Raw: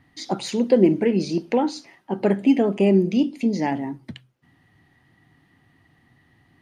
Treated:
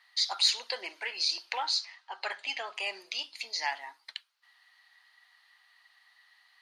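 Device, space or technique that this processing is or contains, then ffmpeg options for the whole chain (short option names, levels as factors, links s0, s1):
headphones lying on a table: -filter_complex "[0:a]highpass=f=1000:w=0.5412,highpass=f=1000:w=1.3066,equalizer=f=4300:t=o:w=0.53:g=12,asettb=1/sr,asplit=3[s0][s1][s2];[s0]atrim=end=1.764[s3];[s1]atrim=start=1.76:end=2.75,asetpts=PTS-STARTPTS,afade=t=in:d=0.004:c=qsin,afade=t=out:st=0.986:d=0.004:c=qsin,lowpass=f=7800:w=0.5412,lowpass=f=7800:w=1.3066[s4];[s2]atrim=start=2.746[s5];[s3][s4]acrossfade=d=0.004:c1=hsin:c2=qsin[s6];[s6][s5]acrossfade=d=0.004:c1=qsin:c2=hsin"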